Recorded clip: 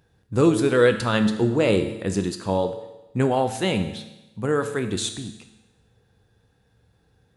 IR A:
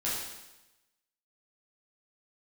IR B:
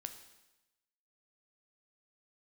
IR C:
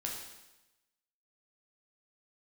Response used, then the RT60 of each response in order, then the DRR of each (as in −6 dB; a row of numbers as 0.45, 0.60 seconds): B; 1.0, 1.0, 1.0 seconds; −8.5, 7.0, −1.5 decibels